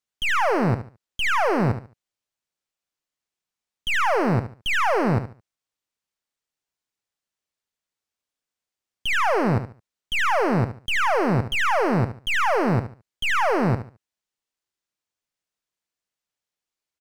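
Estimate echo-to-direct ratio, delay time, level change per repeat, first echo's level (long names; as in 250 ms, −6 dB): −10.5 dB, 72 ms, −12.0 dB, −11.0 dB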